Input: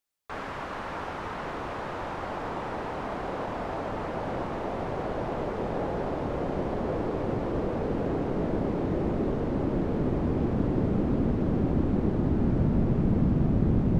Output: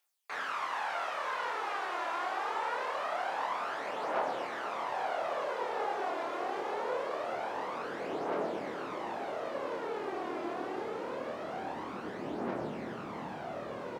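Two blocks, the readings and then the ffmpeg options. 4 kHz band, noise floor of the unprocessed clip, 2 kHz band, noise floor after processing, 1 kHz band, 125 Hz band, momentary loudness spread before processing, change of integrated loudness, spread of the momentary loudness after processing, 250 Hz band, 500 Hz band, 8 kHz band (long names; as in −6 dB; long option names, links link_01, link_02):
+2.5 dB, −36 dBFS, +2.5 dB, −42 dBFS, +1.0 dB, −25.5 dB, 9 LU, −7.0 dB, 5 LU, −16.0 dB, −5.5 dB, can't be measured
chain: -filter_complex "[0:a]highpass=750,areverse,acompressor=mode=upward:threshold=-45dB:ratio=2.5,areverse,aphaser=in_gain=1:out_gain=1:delay=3:decay=0.5:speed=0.24:type=triangular,asplit=2[link_01][link_02];[link_02]adelay=26,volume=-4dB[link_03];[link_01][link_03]amix=inputs=2:normalize=0"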